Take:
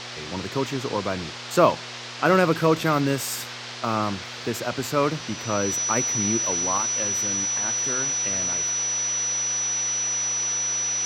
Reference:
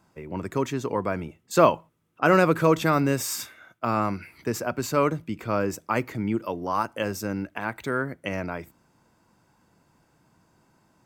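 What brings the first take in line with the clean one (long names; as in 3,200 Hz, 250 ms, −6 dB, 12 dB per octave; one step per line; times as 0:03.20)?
hum removal 121.1 Hz, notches 4
notch filter 5,900 Hz, Q 30
noise reduction from a noise print 28 dB
level correction +5.5 dB, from 0:06.78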